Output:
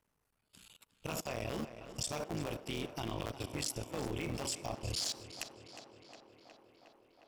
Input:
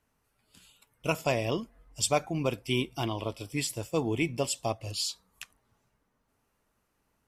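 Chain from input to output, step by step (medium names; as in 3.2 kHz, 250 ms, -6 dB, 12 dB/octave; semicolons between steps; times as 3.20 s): cycle switcher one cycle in 3, muted; on a send at -18.5 dB: reverberation RT60 0.75 s, pre-delay 26 ms; on the sum: level held to a coarse grid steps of 22 dB; dynamic bell 5.8 kHz, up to +6 dB, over -59 dBFS, Q 1.8; tape echo 361 ms, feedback 80%, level -12.5 dB, low-pass 4.3 kHz; in parallel at +1 dB: peak limiter -35 dBFS, peak gain reduction 9 dB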